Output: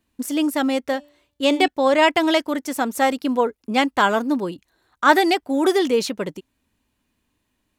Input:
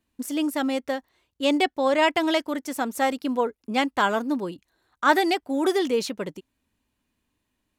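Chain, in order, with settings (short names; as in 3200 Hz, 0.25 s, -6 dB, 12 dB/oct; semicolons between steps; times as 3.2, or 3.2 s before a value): 0.83–1.68 de-hum 291.3 Hz, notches 38; gain +4.5 dB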